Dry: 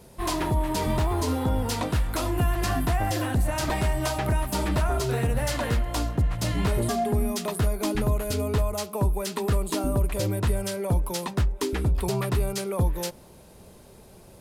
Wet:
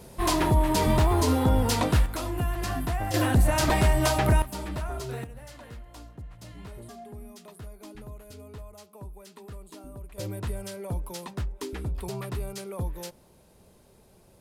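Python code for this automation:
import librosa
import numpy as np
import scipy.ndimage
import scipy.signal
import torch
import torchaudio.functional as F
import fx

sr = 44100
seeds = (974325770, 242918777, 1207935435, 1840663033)

y = fx.gain(x, sr, db=fx.steps((0.0, 3.0), (2.06, -4.5), (3.14, 3.5), (4.42, -8.5), (5.24, -18.5), (10.18, -8.0)))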